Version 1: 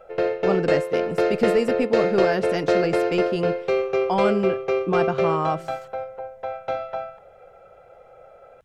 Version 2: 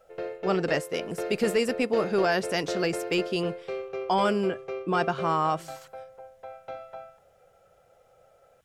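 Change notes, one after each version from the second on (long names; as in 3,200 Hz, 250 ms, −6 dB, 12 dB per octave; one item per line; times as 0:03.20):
speech: add spectral tilt +2 dB per octave
background −12.0 dB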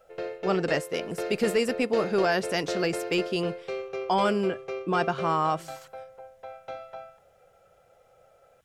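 background: add high-shelf EQ 3,500 Hz +8.5 dB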